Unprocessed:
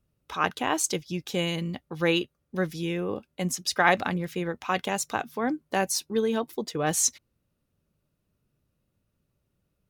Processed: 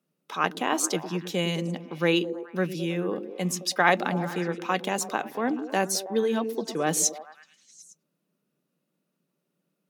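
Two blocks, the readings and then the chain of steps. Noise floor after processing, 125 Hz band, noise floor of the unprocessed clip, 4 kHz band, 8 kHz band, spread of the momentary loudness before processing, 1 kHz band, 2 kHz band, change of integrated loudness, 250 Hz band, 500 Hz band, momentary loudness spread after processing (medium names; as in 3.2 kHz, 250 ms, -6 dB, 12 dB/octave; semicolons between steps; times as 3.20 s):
-80 dBFS, +0.5 dB, -77 dBFS, 0.0 dB, 0.0 dB, 9 LU, +0.5 dB, 0.0 dB, +0.5 dB, +1.5 dB, +1.5 dB, 7 LU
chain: elliptic high-pass 160 Hz; on a send: repeats whose band climbs or falls 107 ms, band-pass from 270 Hz, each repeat 0.7 oct, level -6.5 dB; on the sum: trim +1 dB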